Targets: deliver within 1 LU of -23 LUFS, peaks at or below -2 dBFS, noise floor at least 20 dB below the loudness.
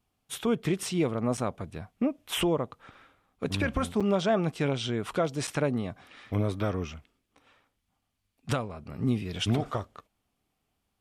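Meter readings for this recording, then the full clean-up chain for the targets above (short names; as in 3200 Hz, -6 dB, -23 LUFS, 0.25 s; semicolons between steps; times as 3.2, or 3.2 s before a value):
dropouts 3; longest dropout 6.2 ms; loudness -30.0 LUFS; peak -15.5 dBFS; loudness target -23.0 LUFS
-> interpolate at 1.37/4/5.47, 6.2 ms; gain +7 dB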